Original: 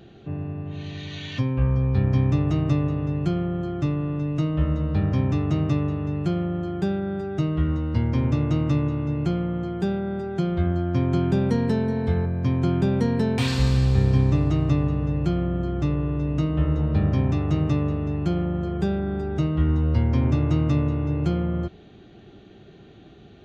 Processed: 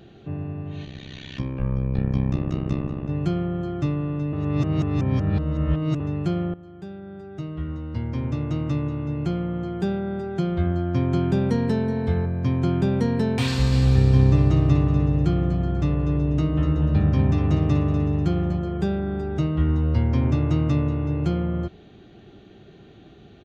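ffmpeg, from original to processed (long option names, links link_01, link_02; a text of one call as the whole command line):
ffmpeg -i in.wav -filter_complex "[0:a]asplit=3[link_01][link_02][link_03];[link_01]afade=type=out:start_time=0.84:duration=0.02[link_04];[link_02]tremolo=f=65:d=1,afade=type=in:start_time=0.84:duration=0.02,afade=type=out:start_time=3.08:duration=0.02[link_05];[link_03]afade=type=in:start_time=3.08:duration=0.02[link_06];[link_04][link_05][link_06]amix=inputs=3:normalize=0,asplit=3[link_07][link_08][link_09];[link_07]afade=type=out:start_time=13.71:duration=0.02[link_10];[link_08]aecho=1:1:245|490|735|980:0.355|0.142|0.0568|0.0227,afade=type=in:start_time=13.71:duration=0.02,afade=type=out:start_time=18.58:duration=0.02[link_11];[link_09]afade=type=in:start_time=18.58:duration=0.02[link_12];[link_10][link_11][link_12]amix=inputs=3:normalize=0,asplit=4[link_13][link_14][link_15][link_16];[link_13]atrim=end=4.332[link_17];[link_14]atrim=start=4.328:end=6.002,asetpts=PTS-STARTPTS,areverse[link_18];[link_15]atrim=start=5.998:end=6.54,asetpts=PTS-STARTPTS,afade=type=out:start_time=0.538:duration=0.004:curve=hsin:silence=0.141254[link_19];[link_16]atrim=start=6.54,asetpts=PTS-STARTPTS,afade=type=in:duration=3.28:silence=0.141254[link_20];[link_17][link_18]acrossfade=duration=0.004:curve1=hsin:curve2=hsin[link_21];[link_19][link_20]concat=n=2:v=0:a=1[link_22];[link_21][link_22]acrossfade=duration=0.004:curve1=hsin:curve2=hsin" out.wav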